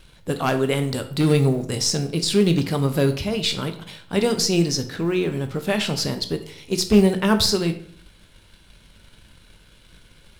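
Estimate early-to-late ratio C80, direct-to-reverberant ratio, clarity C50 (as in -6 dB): 15.5 dB, 7.0 dB, 11.5 dB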